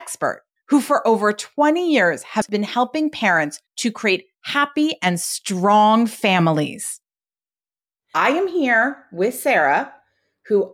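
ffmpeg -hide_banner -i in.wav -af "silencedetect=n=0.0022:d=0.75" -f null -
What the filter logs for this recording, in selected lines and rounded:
silence_start: 6.98
silence_end: 8.11 | silence_duration: 1.13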